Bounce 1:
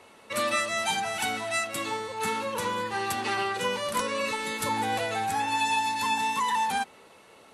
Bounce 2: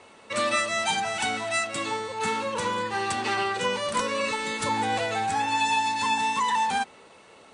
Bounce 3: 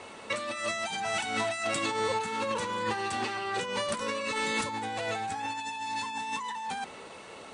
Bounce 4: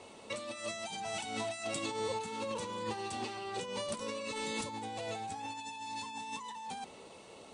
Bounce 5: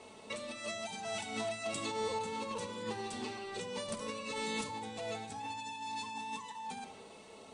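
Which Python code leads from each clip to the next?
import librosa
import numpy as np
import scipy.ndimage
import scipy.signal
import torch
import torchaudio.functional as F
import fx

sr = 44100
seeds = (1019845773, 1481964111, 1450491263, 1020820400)

y1 = scipy.signal.sosfilt(scipy.signal.butter(16, 9600.0, 'lowpass', fs=sr, output='sos'), x)
y1 = y1 * librosa.db_to_amplitude(2.0)
y2 = fx.over_compress(y1, sr, threshold_db=-33.0, ratio=-1.0)
y3 = fx.peak_eq(y2, sr, hz=1600.0, db=-10.5, octaves=1.1)
y3 = y3 * librosa.db_to_amplitude(-4.5)
y4 = fx.room_shoebox(y3, sr, seeds[0], volume_m3=3300.0, walls='furnished', distance_m=1.5)
y4 = y4 * librosa.db_to_amplitude(-2.0)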